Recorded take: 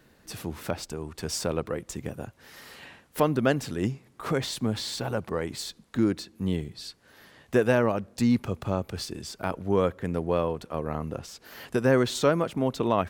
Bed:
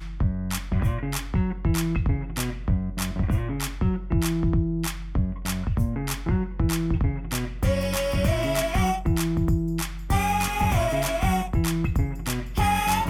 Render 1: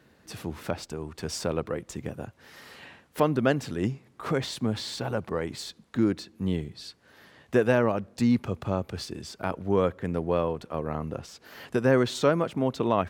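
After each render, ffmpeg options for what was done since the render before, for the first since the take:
-af "highpass=53,highshelf=f=7.1k:g=-7.5"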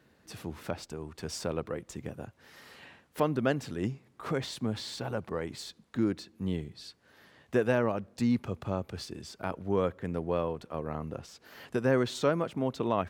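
-af "volume=-4.5dB"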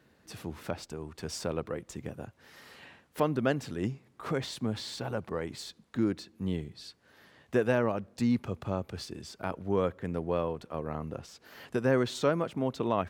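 -af anull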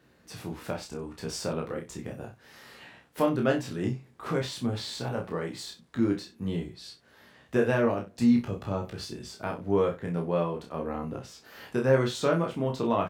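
-filter_complex "[0:a]asplit=2[a][b];[b]adelay=30,volume=-4dB[c];[a][c]amix=inputs=2:normalize=0,aecho=1:1:17|63:0.501|0.211"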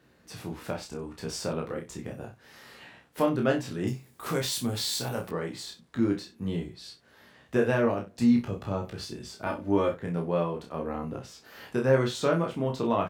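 -filter_complex "[0:a]asettb=1/sr,asplit=3[a][b][c];[a]atrim=end=3.874[d];[b]atrim=start=3.87:end=5.31,asetpts=PTS-STARTPTS,afade=t=in:d=0.004:c=qsin,afade=t=out:st=1.436:d=0.004:c=qsin,aemphasis=mode=production:type=75fm[e];[c]atrim=start=5.306[f];[d][e]acrossfade=d=0.004:c1=hsin:c2=qsin[g];[g][f]acrossfade=d=0.004:c1=qsin:c2=hsin,asettb=1/sr,asplit=3[h][i][j];[h]atrim=end=9.464[k];[i]atrim=start=9.46:end=9.94,asetpts=PTS-STARTPTS,afade=t=in:d=0.004:c=qsin,afade=t=out:st=0.476:d=0.004:c=qsin,aecho=1:1:3.4:0.82,atrim=end_sample=21168[l];[j]atrim=start=9.936[m];[k][l]acrossfade=d=0.004:c1=hsin:c2=qsin[n];[n][m]acrossfade=d=0.004:c1=qsin:c2=hsin"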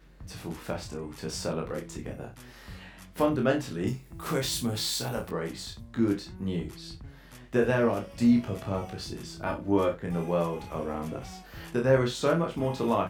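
-filter_complex "[1:a]volume=-22dB[a];[0:a][a]amix=inputs=2:normalize=0"

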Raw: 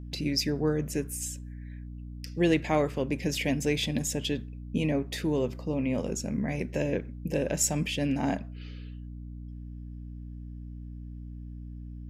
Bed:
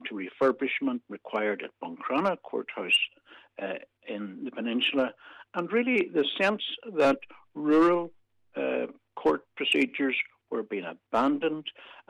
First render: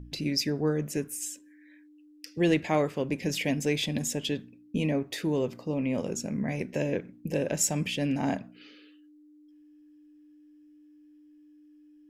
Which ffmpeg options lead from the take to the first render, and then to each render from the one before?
-af "bandreject=f=60:t=h:w=4,bandreject=f=120:t=h:w=4,bandreject=f=180:t=h:w=4,bandreject=f=240:t=h:w=4"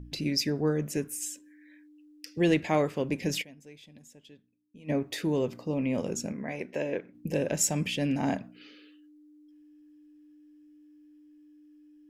-filter_complex "[0:a]asettb=1/sr,asplit=3[a][b][c];[a]atrim=end=6.324[d];[b]atrim=start=6.32:end=7.15,asetpts=PTS-STARTPTS,afade=t=in:d=0.004:c=qsin,afade=t=out:st=0.826:d=0.004:c=qsin,bass=f=250:g=-12,treble=f=4k:g=-8[e];[c]atrim=start=7.146[f];[d][e]acrossfade=d=0.004:c1=hsin:c2=qsin[g];[g][f]acrossfade=d=0.004:c1=qsin:c2=hsin,asplit=3[h][i][j];[h]atrim=end=3.54,asetpts=PTS-STARTPTS,afade=t=out:st=3.41:d=0.13:c=exp:silence=0.0707946[k];[i]atrim=start=3.54:end=4.77,asetpts=PTS-STARTPTS,volume=-23dB[l];[j]atrim=start=4.77,asetpts=PTS-STARTPTS,afade=t=in:d=0.13:c=exp:silence=0.0707946[m];[k][l][m]concat=n=3:v=0:a=1"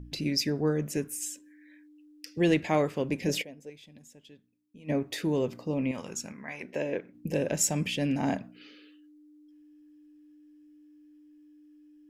-filter_complex "[0:a]asettb=1/sr,asplit=3[a][b][c];[a]atrim=end=3.284[d];[b]atrim=start=3.28:end=3.7,asetpts=PTS-STARTPTS,afade=t=in:d=0.004:c=qsin,afade=t=out:st=0.416:d=0.004:c=qsin,equalizer=f=500:w=1.2:g=10[e];[c]atrim=start=3.696[f];[d][e]acrossfade=d=0.004:c1=hsin:c2=qsin[g];[g][f]acrossfade=d=0.004:c1=qsin:c2=hsin,asettb=1/sr,asplit=3[h][i][j];[h]atrim=end=5.914[k];[i]atrim=start=5.91:end=6.63,asetpts=PTS-STARTPTS,afade=t=in:d=0.004:c=qsin,afade=t=out:st=0.716:d=0.004:c=qsin,lowshelf=f=760:t=q:w=1.5:g=-8[l];[j]atrim=start=6.626[m];[k][l]acrossfade=d=0.004:c1=hsin:c2=qsin[n];[n][m]acrossfade=d=0.004:c1=qsin:c2=hsin"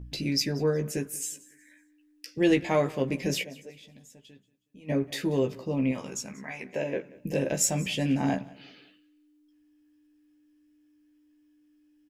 -filter_complex "[0:a]asplit=2[a][b];[b]adelay=15,volume=-4.5dB[c];[a][c]amix=inputs=2:normalize=0,aecho=1:1:184|368|552:0.0841|0.0294|0.0103"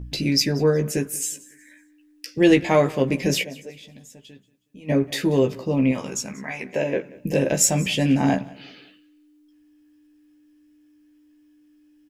-af "volume=7dB"

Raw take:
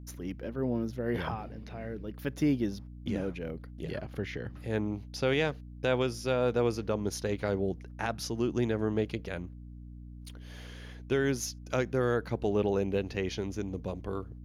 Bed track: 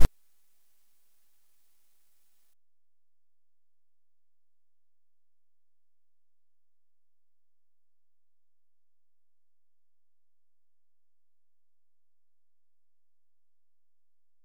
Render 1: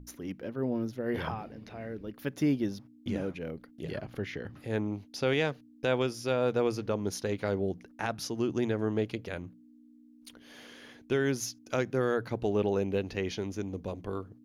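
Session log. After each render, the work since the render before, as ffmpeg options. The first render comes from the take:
-af "bandreject=f=60:t=h:w=6,bandreject=f=120:t=h:w=6,bandreject=f=180:t=h:w=6"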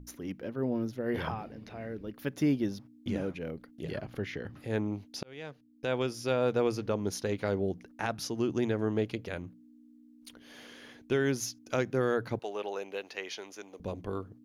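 -filter_complex "[0:a]asettb=1/sr,asplit=3[a][b][c];[a]atrim=end=12.394[d];[b]atrim=start=12.39:end=13.8,asetpts=PTS-STARTPTS,afade=t=in:d=0.004:c=qsin,afade=t=out:st=1.406:d=0.004:c=qsin,highpass=660[e];[c]atrim=start=13.796[f];[d][e]acrossfade=d=0.004:c1=hsin:c2=qsin[g];[g][f]acrossfade=d=0.004:c1=qsin:c2=hsin,asplit=2[h][i];[h]atrim=end=5.23,asetpts=PTS-STARTPTS,afade=t=out:st=5.226:d=0.004:c=hsin[j];[i]atrim=start=5.23,asetpts=PTS-STARTPTS,afade=t=in:d=0.99[k];[j][k]concat=n=2:v=0:a=1"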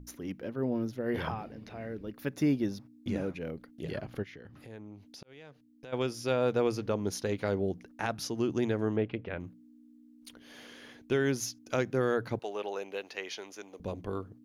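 -filter_complex "[0:a]asettb=1/sr,asplit=3[a][b][c];[a]atrim=end=2.114[d];[b]atrim=start=2.11:end=3.39,asetpts=PTS-STARTPTS,afade=t=in:d=0.004:c=qsin,afade=t=out:st=1.276:d=0.004:c=qsin,bandreject=f=3.1k:w=12[e];[c]atrim=start=3.386[f];[d][e]acrossfade=d=0.004:c1=hsin:c2=qsin[g];[g][f]acrossfade=d=0.004:c1=qsin:c2=hsin,asplit=3[h][i][j];[h]afade=t=out:st=4.22:d=0.02[k];[i]acompressor=threshold=-50dB:ratio=2.5:attack=3.2:release=140:knee=1:detection=peak,afade=t=in:st=4.22:d=0.02,afade=t=out:st=5.92:d=0.02[l];[j]afade=t=in:st=5.92:d=0.02[m];[k][l][m]amix=inputs=3:normalize=0,asettb=1/sr,asplit=3[n][o][p];[n]atrim=end=8.964[q];[o]atrim=start=8.96:end=9.4,asetpts=PTS-STARTPTS,afade=t=in:d=0.004:c=qsin,afade=t=out:st=0.436:d=0.004:c=qsin,lowpass=f=2.9k:w=0.5412,lowpass=f=2.9k:w=1.3066[r];[p]atrim=start=9.396[s];[q][r]acrossfade=d=0.004:c1=hsin:c2=qsin[t];[t][s]acrossfade=d=0.004:c1=qsin:c2=hsin"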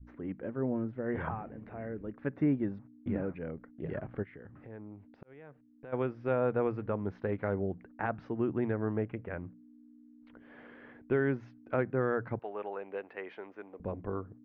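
-af "lowpass=f=1.9k:w=0.5412,lowpass=f=1.9k:w=1.3066,adynamicequalizer=threshold=0.0112:dfrequency=380:dqfactor=0.78:tfrequency=380:tqfactor=0.78:attack=5:release=100:ratio=0.375:range=2.5:mode=cutabove:tftype=bell"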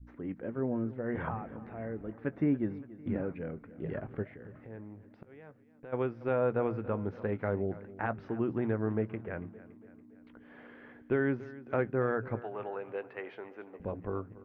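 -filter_complex "[0:a]asplit=2[a][b];[b]adelay=18,volume=-14dB[c];[a][c]amix=inputs=2:normalize=0,aecho=1:1:283|566|849|1132|1415:0.133|0.072|0.0389|0.021|0.0113"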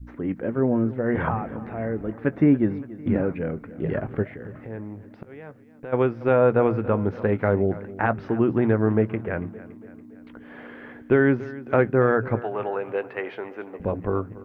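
-af "volume=11dB"

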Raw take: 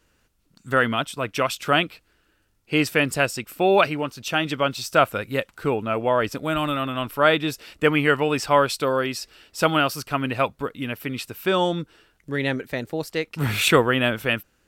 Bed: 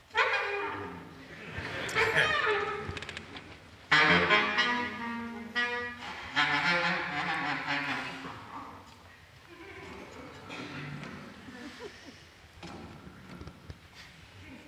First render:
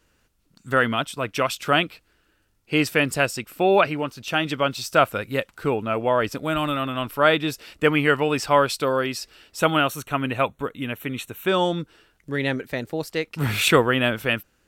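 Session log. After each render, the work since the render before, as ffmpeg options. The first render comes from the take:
-filter_complex "[0:a]asettb=1/sr,asplit=3[a][b][c];[a]atrim=end=3.414[d];[b]atrim=start=3.41:end=4.28,asetpts=PTS-STARTPTS,afade=t=in:d=0.004:c=qsin,afade=t=out:st=0.866:d=0.004:c=qsin,acrossover=split=3300[e][f];[f]acompressor=threshold=-40dB:ratio=4:attack=1:release=60[g];[e][g]amix=inputs=2:normalize=0[h];[c]atrim=start=4.276[i];[d][h]acrossfade=d=0.004:c1=hsin:c2=qsin[j];[j][i]acrossfade=d=0.004:c1=qsin:c2=hsin,asettb=1/sr,asplit=3[k][l][m];[k]atrim=end=9.594[n];[l]atrim=start=9.59:end=11.49,asetpts=PTS-STARTPTS,afade=t=in:d=0.004:c=qsin,afade=t=out:st=1.896:d=0.004:c=qsin,asuperstop=centerf=4900:order=4:qfactor=3.1[o];[m]atrim=start=11.486[p];[n][o]acrossfade=d=0.004:c1=hsin:c2=qsin[q];[q][p]acrossfade=d=0.004:c1=qsin:c2=hsin"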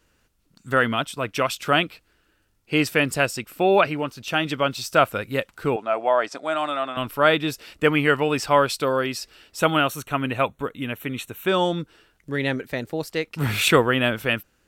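-filter_complex "[0:a]asettb=1/sr,asplit=3[a][b][c];[a]atrim=end=5.764[d];[b]atrim=start=5.76:end=6.97,asetpts=PTS-STARTPTS,afade=t=in:d=0.004:c=qsin,afade=t=out:st=1.206:d=0.004:c=qsin,highpass=430,equalizer=f=470:t=q:w=4:g=-5,equalizer=f=700:t=q:w=4:g=8,equalizer=f=2.8k:t=q:w=4:g=-6,lowpass=f=8.5k:w=0.5412,lowpass=f=8.5k:w=1.3066[e];[c]atrim=start=6.966[f];[d][e]acrossfade=d=0.004:c1=hsin:c2=qsin[g];[g][f]acrossfade=d=0.004:c1=qsin:c2=hsin"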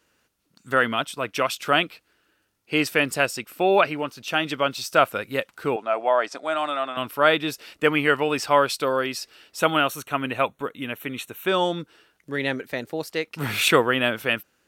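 -af "highpass=f=250:p=1,bandreject=f=7.6k:w=22"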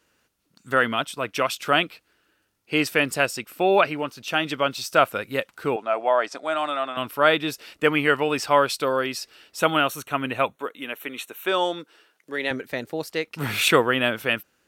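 -filter_complex "[0:a]asettb=1/sr,asplit=3[a][b][c];[a]atrim=end=10.564[d];[b]atrim=start=10.56:end=12.51,asetpts=PTS-STARTPTS,afade=t=in:d=0.004:c=qsin,afade=t=out:st=1.946:d=0.004:c=qsin,highpass=330[e];[c]atrim=start=12.506[f];[d][e]acrossfade=d=0.004:c1=hsin:c2=qsin[g];[g][f]acrossfade=d=0.004:c1=qsin:c2=hsin"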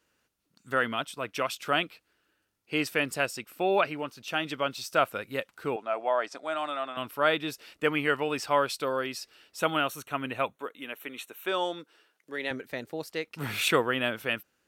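-af "volume=-6.5dB"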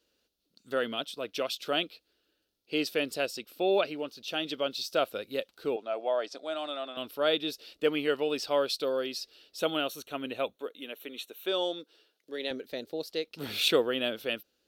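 -af "equalizer=f=125:t=o:w=1:g=-11,equalizer=f=500:t=o:w=1:g=4,equalizer=f=1k:t=o:w=1:g=-9,equalizer=f=2k:t=o:w=1:g=-9,equalizer=f=4k:t=o:w=1:g=9,equalizer=f=8k:t=o:w=1:g=-7"

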